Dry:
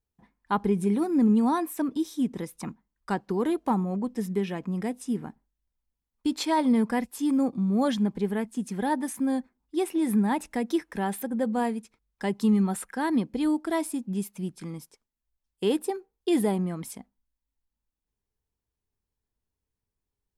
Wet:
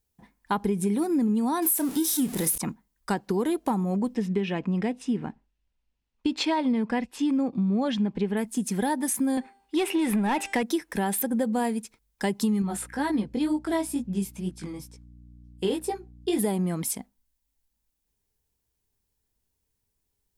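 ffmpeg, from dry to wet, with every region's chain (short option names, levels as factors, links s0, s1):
-filter_complex "[0:a]asettb=1/sr,asplit=3[s0][s1][s2];[s0]atrim=end=1.624[s3];[s1]atrim=start=1.62:end=2.58,asetpts=PTS-STARTPTS,afade=t=in:d=0.004:c=qsin,afade=t=out:st=0.956:d=0.004:c=qsin,aeval=exprs='val(0)+0.5*0.0126*sgn(val(0))':c=same,equalizer=f=11000:w=1.3:g=11,asplit=2[s4][s5];[s5]adelay=31,volume=0.266[s6];[s4][s6]amix=inputs=2:normalize=0,atrim=end_sample=42336[s7];[s2]atrim=start=2.576[s8];[s3][s7]acrossfade=d=0.004:c1=hsin:c2=qsin[s9];[s9][s8]acrossfade=d=0.004:c1=qsin:c2=hsin,asettb=1/sr,asplit=3[s10][s11][s12];[s10]atrim=end=4.154[s13];[s11]atrim=start=4.15:end=8.37,asetpts=PTS-STARTPTS,afade=t=in:d=0.004:c=qsin,afade=t=out:st=4.216:d=0.004:c=qsin,lowpass=3800,equalizer=f=2700:t=o:w=0.25:g=6[s14];[s12]atrim=start=8.366[s15];[s13][s14]acrossfade=d=0.004:c1=hsin:c2=qsin[s16];[s16][s15]acrossfade=d=0.004:c1=qsin:c2=hsin,asettb=1/sr,asplit=3[s17][s18][s19];[s17]atrim=end=9.374[s20];[s18]atrim=start=9.37:end=10.63,asetpts=PTS-STARTPTS,afade=t=in:d=0.004:c=qsin,afade=t=out:st=1.256:d=0.004:c=qsin,equalizer=f=2700:w=2.2:g=7.5,bandreject=f=395.3:t=h:w=4,bandreject=f=790.6:t=h:w=4,bandreject=f=1185.9:t=h:w=4,bandreject=f=1581.2:t=h:w=4,bandreject=f=1976.5:t=h:w=4,bandreject=f=2371.8:t=h:w=4,bandreject=f=2767.1:t=h:w=4,bandreject=f=3162.4:t=h:w=4,bandreject=f=3557.7:t=h:w=4,bandreject=f=3953:t=h:w=4,bandreject=f=4348.3:t=h:w=4,bandreject=f=4743.6:t=h:w=4,bandreject=f=5138.9:t=h:w=4,bandreject=f=5534.2:t=h:w=4,bandreject=f=5929.5:t=h:w=4,bandreject=f=6324.8:t=h:w=4,bandreject=f=6720.1:t=h:w=4,bandreject=f=7115.4:t=h:w=4,bandreject=f=7510.7:t=h:w=4,bandreject=f=7906:t=h:w=4,bandreject=f=8301.3:t=h:w=4,bandreject=f=8696.6:t=h:w=4,bandreject=f=9091.9:t=h:w=4,bandreject=f=9487.2:t=h:w=4,asplit=2[s21][s22];[s22]highpass=f=720:p=1,volume=6.31,asoftclip=type=tanh:threshold=0.178[s23];[s21][s23]amix=inputs=2:normalize=0,lowpass=f=1900:p=1,volume=0.501[s24];[s19]atrim=start=10.626[s25];[s20][s24]acrossfade=d=0.004:c1=hsin:c2=qsin[s26];[s26][s25]acrossfade=d=0.004:c1=qsin:c2=hsin,asettb=1/sr,asplit=3[s27][s28][s29];[s27]atrim=end=12.624[s30];[s28]atrim=start=12.62:end=16.39,asetpts=PTS-STARTPTS,afade=t=in:d=0.004:c=qsin,afade=t=out:st=3.766:d=0.004:c=qsin,highshelf=f=9000:g=-11.5,flanger=delay=16.5:depth=5.3:speed=2.1,aeval=exprs='val(0)+0.00224*(sin(2*PI*60*n/s)+sin(2*PI*2*60*n/s)/2+sin(2*PI*3*60*n/s)/3+sin(2*PI*4*60*n/s)/4+sin(2*PI*5*60*n/s)/5)':c=same[s31];[s29]atrim=start=16.386[s32];[s30][s31]acrossfade=d=0.004:c1=hsin:c2=qsin[s33];[s33][s32]acrossfade=d=0.004:c1=qsin:c2=hsin,highshelf=f=4800:g=8.5,acompressor=threshold=0.0447:ratio=6,equalizer=f=1200:t=o:w=0.37:g=-3,volume=1.78"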